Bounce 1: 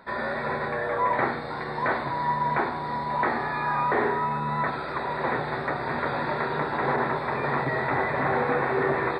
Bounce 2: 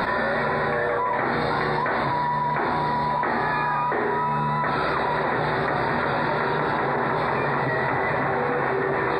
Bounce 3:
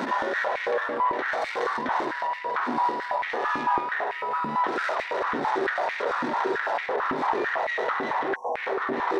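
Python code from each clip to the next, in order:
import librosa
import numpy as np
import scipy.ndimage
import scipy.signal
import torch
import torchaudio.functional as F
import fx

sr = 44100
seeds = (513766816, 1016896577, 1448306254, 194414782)

y1 = fx.env_flatten(x, sr, amount_pct=100)
y1 = y1 * librosa.db_to_amplitude(-2.0)
y2 = fx.tracing_dist(y1, sr, depth_ms=0.08)
y2 = fx.spec_erase(y2, sr, start_s=8.35, length_s=0.21, low_hz=1100.0, high_hz=5500.0)
y2 = fx.filter_held_highpass(y2, sr, hz=9.0, low_hz=260.0, high_hz=2200.0)
y2 = y2 * librosa.db_to_amplitude(-7.5)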